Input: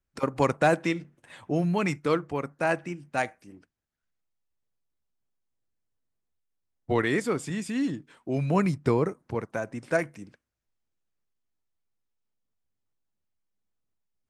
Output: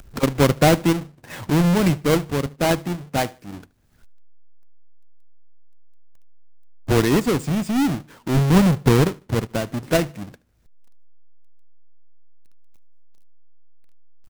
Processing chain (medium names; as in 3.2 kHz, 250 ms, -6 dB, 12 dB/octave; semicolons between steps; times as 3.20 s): square wave that keeps the level; bass shelf 310 Hz +8 dB; upward compressor, threshold -25 dBFS; on a send: feedback delay 75 ms, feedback 30%, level -23.5 dB